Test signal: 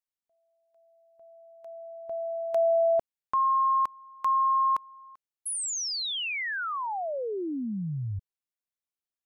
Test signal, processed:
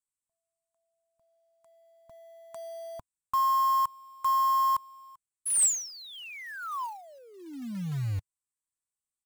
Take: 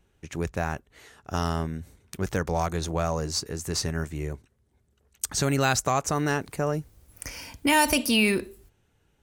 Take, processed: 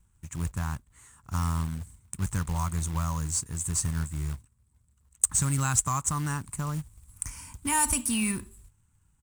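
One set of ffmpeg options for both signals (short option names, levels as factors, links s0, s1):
-af "firequalizer=gain_entry='entry(100,0);entry(260,-10);entry(420,-23);entry(700,-21);entry(1000,-3);entry(1600,-12);entry(3500,-16);entry(5000,-16);entry(7900,8);entry(15000,-17)':delay=0.05:min_phase=1,acrusher=bits=4:mode=log:mix=0:aa=0.000001,volume=1.41"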